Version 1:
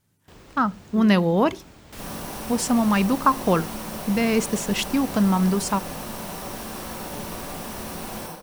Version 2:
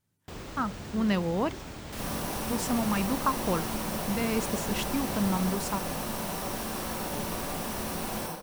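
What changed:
speech -9.0 dB; first sound +7.0 dB

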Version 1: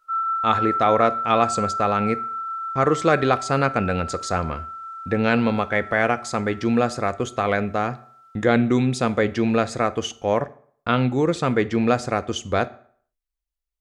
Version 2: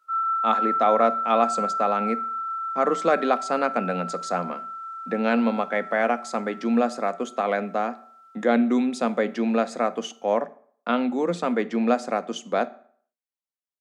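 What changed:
speech: add rippled Chebyshev high-pass 170 Hz, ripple 6 dB; background: send off

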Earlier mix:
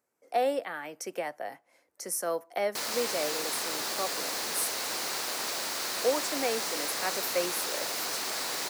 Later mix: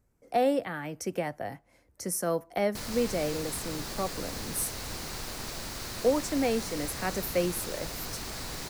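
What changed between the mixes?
background -6.5 dB; master: remove HPF 450 Hz 12 dB/oct

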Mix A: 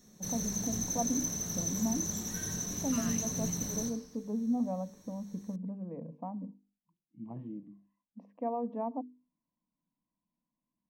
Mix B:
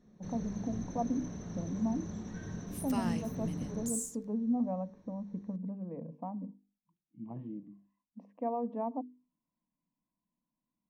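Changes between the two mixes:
first sound: add tape spacing loss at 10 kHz 36 dB; second sound: remove brick-wall FIR band-pass 1000–5500 Hz

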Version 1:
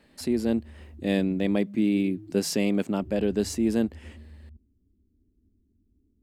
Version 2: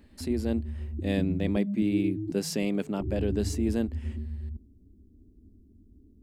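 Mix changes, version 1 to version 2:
speech -4.0 dB; background +11.5 dB

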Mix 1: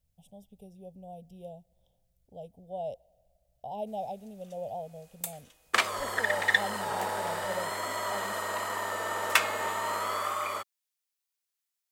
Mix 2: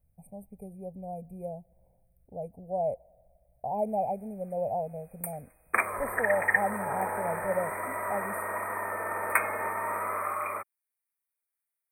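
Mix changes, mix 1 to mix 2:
speech +6.5 dB; master: add brick-wall FIR band-stop 2500–8200 Hz

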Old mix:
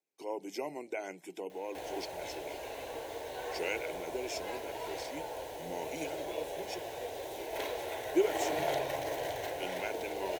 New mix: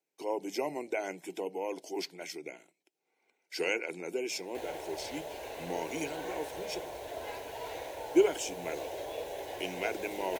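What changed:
speech +4.5 dB; background: entry +2.80 s

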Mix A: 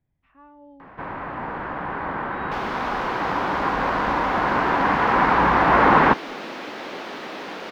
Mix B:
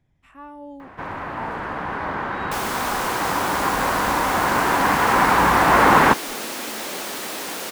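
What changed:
speech +8.5 dB; first sound: add bell 92 Hz +6 dB 0.42 oct; master: remove air absorption 260 m

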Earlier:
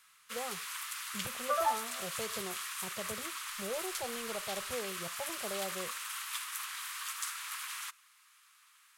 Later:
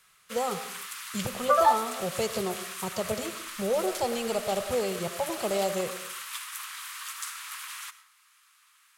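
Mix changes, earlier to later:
speech +9.5 dB; second sound +9.5 dB; reverb: on, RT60 0.55 s

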